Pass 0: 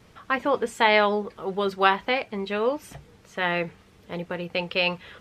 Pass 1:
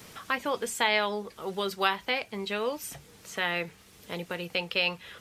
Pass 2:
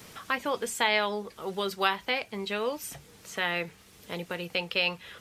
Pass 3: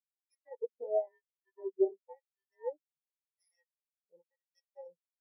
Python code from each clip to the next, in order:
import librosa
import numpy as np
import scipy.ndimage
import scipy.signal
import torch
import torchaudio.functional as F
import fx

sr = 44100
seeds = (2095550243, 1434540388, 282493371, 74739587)

y1 = librosa.effects.preemphasis(x, coef=0.8, zi=[0.0])
y1 = fx.band_squash(y1, sr, depth_pct=40)
y1 = y1 * 10.0 ** (6.5 / 20.0)
y2 = y1
y3 = fx.bit_reversed(y2, sr, seeds[0], block=32)
y3 = fx.filter_lfo_bandpass(y3, sr, shape='sine', hz=0.94, low_hz=380.0, high_hz=3300.0, q=0.87)
y3 = fx.spectral_expand(y3, sr, expansion=4.0)
y3 = y3 * 10.0 ** (2.5 / 20.0)